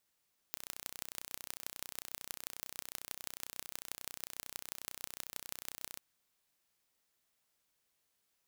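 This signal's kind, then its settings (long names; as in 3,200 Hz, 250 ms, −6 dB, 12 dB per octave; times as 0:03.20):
impulse train 31.1 per second, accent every 5, −11.5 dBFS 5.45 s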